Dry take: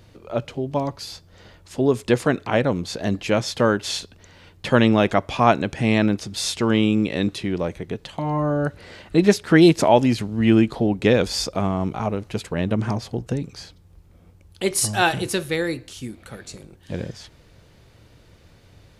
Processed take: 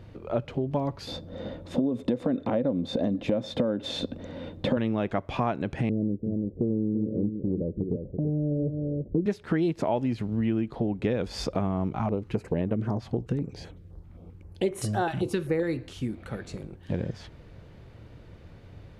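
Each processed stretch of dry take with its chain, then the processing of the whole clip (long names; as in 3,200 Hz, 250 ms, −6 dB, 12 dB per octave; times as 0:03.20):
0:01.07–0:04.77: downward compressor 3 to 1, threshold −26 dBFS + hollow resonant body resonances 260/520/3,600 Hz, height 17 dB, ringing for 30 ms
0:05.89–0:09.26: Butterworth low-pass 540 Hz 48 dB per octave + single-tap delay 334 ms −9 dB
0:11.96–0:15.63: parametric band 450 Hz +4.5 dB 1.7 octaves + notch on a step sequencer 7.7 Hz 460–4,800 Hz
whole clip: bass and treble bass +5 dB, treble −11 dB; downward compressor 6 to 1, threshold −25 dBFS; parametric band 440 Hz +3.5 dB 2.4 octaves; level −1.5 dB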